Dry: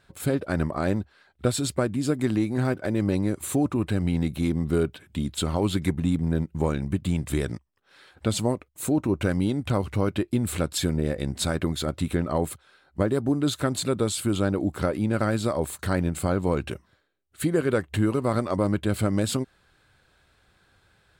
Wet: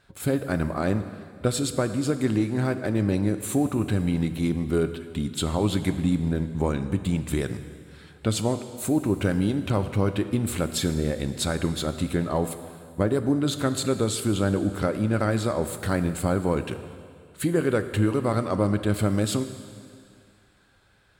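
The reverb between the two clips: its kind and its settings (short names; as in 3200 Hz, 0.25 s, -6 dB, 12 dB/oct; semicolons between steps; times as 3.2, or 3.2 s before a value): plate-style reverb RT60 2.2 s, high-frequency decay 1×, DRR 9.5 dB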